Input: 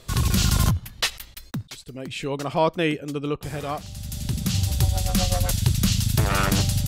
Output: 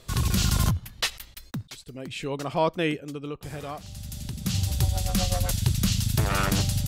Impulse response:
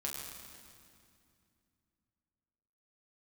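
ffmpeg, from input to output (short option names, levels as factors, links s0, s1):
-filter_complex "[0:a]asplit=3[s0][s1][s2];[s0]afade=t=out:st=2.99:d=0.02[s3];[s1]acompressor=threshold=0.0316:ratio=2.5,afade=t=in:st=2.99:d=0.02,afade=t=out:st=4.45:d=0.02[s4];[s2]afade=t=in:st=4.45:d=0.02[s5];[s3][s4][s5]amix=inputs=3:normalize=0,volume=0.708"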